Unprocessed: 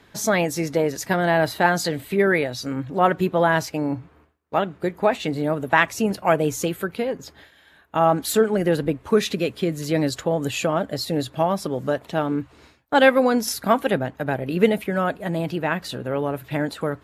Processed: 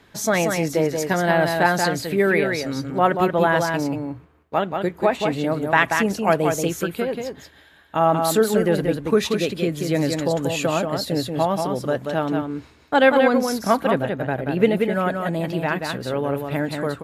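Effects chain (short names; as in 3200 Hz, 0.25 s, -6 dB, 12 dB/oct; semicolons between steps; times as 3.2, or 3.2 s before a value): 12.96–14.88 high shelf 4800 Hz -7 dB; echo 0.183 s -5 dB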